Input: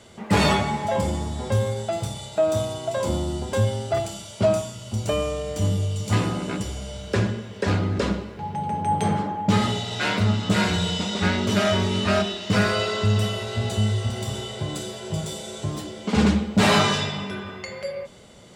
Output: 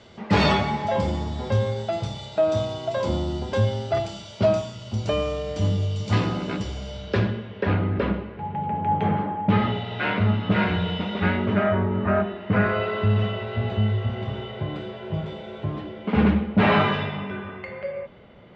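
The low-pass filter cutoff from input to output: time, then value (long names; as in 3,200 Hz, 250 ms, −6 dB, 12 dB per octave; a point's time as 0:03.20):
low-pass filter 24 dB per octave
0:06.89 5,300 Hz
0:07.76 2,800 Hz
0:11.28 2,800 Hz
0:11.89 1,600 Hz
0:13.11 2,700 Hz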